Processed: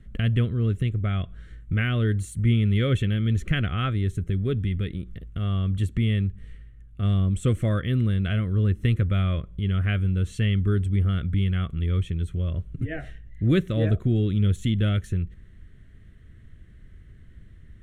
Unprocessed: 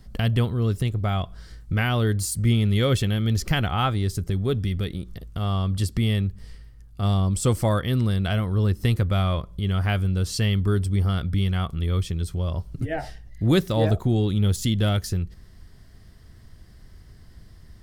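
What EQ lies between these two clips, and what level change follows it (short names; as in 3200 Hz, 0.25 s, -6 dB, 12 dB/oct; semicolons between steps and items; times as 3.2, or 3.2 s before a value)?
air absorption 72 m; fixed phaser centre 2100 Hz, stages 4; 0.0 dB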